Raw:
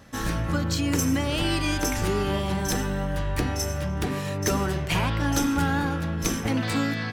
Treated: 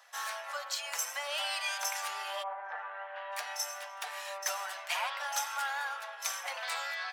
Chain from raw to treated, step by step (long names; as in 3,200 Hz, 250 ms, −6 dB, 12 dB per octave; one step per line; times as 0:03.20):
flanger 0.52 Hz, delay 4 ms, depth 2 ms, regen +48%
0:02.42–0:03.31: low-pass filter 1,300 Hz → 3,200 Hz 24 dB per octave
soft clipping −18.5 dBFS, distortion −25 dB
Butterworth high-pass 640 Hz 48 dB per octave